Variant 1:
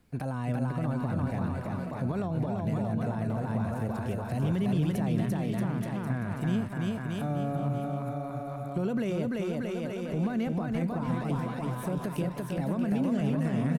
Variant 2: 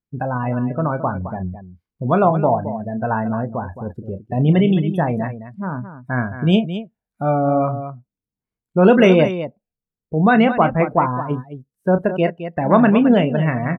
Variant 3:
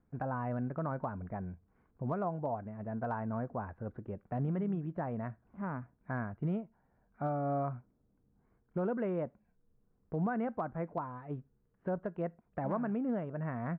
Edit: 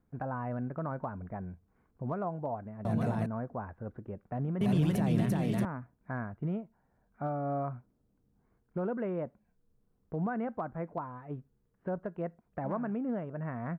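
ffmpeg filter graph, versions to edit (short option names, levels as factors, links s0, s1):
-filter_complex "[0:a]asplit=2[s0][s1];[2:a]asplit=3[s2][s3][s4];[s2]atrim=end=2.852[s5];[s0]atrim=start=2.848:end=3.262[s6];[s3]atrim=start=3.258:end=4.612[s7];[s1]atrim=start=4.608:end=5.652[s8];[s4]atrim=start=5.648[s9];[s5][s6]acrossfade=d=0.004:c1=hsin:c2=hsin[s10];[s10][s7]acrossfade=d=0.004:c1=hsin:c2=hsin[s11];[s11][s8]acrossfade=d=0.004:c1=hsin:c2=hsin[s12];[s12][s9]acrossfade=d=0.004:c1=hsin:c2=hsin"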